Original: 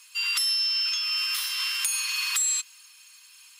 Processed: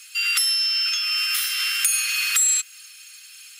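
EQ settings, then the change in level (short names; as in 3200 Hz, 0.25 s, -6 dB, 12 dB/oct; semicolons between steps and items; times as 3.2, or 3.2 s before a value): dynamic EQ 4400 Hz, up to -5 dB, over -40 dBFS, Q 0.99; Chebyshev high-pass 1300 Hz, order 5; +8.5 dB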